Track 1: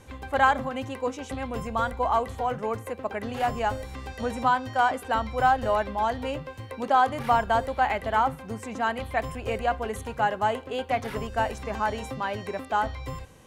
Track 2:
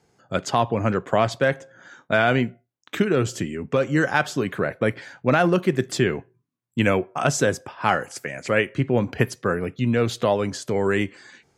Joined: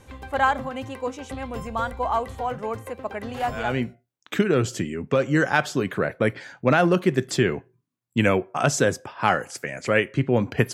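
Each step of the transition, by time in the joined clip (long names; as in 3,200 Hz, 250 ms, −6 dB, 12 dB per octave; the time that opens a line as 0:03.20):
track 1
0:03.72: continue with track 2 from 0:02.33, crossfade 0.46 s linear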